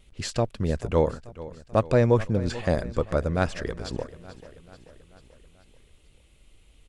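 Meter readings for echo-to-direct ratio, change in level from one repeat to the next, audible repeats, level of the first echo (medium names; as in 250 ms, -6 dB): -15.5 dB, -5.0 dB, 4, -17.0 dB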